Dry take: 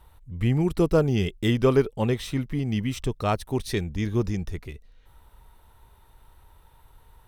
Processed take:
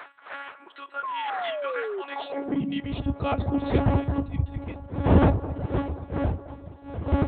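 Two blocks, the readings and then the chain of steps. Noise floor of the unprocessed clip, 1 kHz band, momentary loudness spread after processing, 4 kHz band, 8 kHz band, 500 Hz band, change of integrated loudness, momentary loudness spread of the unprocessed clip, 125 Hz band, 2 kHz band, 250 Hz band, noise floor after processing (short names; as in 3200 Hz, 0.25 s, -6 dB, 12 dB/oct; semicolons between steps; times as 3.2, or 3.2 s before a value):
-56 dBFS, +5.0 dB, 16 LU, -3.5 dB, under -35 dB, -3.0 dB, -2.0 dB, 9 LU, 0.0 dB, +1.0 dB, 0.0 dB, -50 dBFS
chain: wind noise 540 Hz -23 dBFS; resonant low shelf 110 Hz +9.5 dB, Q 1.5; shoebox room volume 550 m³, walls furnished, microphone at 1.2 m; reverb removal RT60 0.73 s; compressor 3:1, threshold -17 dBFS, peak gain reduction 11 dB; monotone LPC vocoder at 8 kHz 280 Hz; bell 1800 Hz -3.5 dB 1.7 oct; on a send: band-limited delay 0.217 s, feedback 44%, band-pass 610 Hz, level -14 dB; on the sum: high-pass sweep 1500 Hz -> 78 Hz, 1.97–2.92; painted sound fall, 1.03–2.02, 370–1100 Hz -31 dBFS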